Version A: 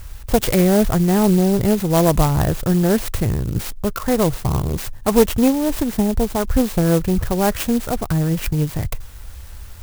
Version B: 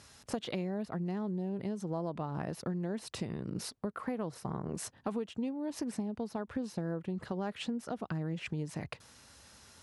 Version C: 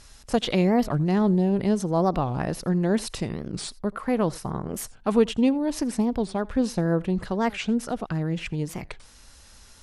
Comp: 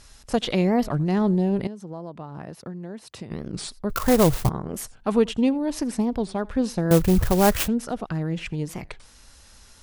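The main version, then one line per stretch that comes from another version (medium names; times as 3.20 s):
C
1.67–3.31 s: from B
3.90–4.49 s: from A
6.91–7.68 s: from A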